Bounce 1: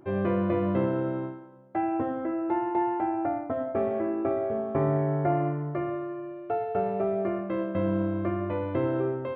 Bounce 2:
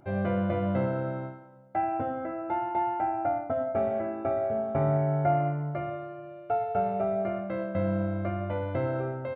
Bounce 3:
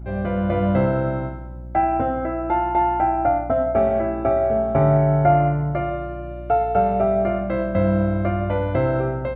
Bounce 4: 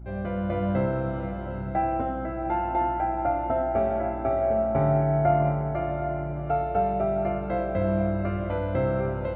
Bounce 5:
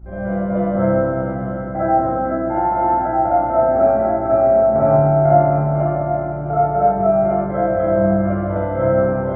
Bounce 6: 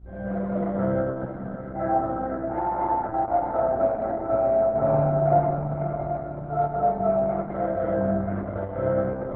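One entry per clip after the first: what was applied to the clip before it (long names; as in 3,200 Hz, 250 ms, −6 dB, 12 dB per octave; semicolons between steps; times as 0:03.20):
comb filter 1.4 ms, depth 61%; level −1.5 dB
automatic gain control gain up to 6 dB; hum with harmonics 60 Hz, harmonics 6, −37 dBFS −8 dB per octave; level +3 dB
feedback delay with all-pass diffusion 727 ms, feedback 40%, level −7.5 dB; level −6.5 dB
Savitzky-Golay smoothing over 41 samples; convolution reverb RT60 0.90 s, pre-delay 10 ms, DRR −9 dB; level −1 dB
level −7 dB; Opus 8 kbit/s 48,000 Hz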